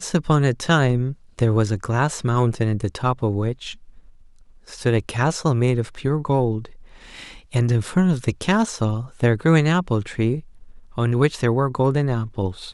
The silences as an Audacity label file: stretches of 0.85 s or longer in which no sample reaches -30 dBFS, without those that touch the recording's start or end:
3.730000	4.690000	silence